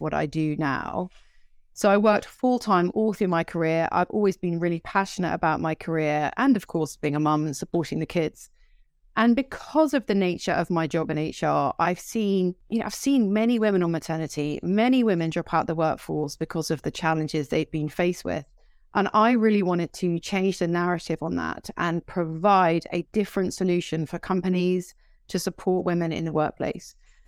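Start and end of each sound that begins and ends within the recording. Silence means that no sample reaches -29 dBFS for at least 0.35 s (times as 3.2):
1.78–8.28
9.17–18.39
18.95–24.81
25.3–26.77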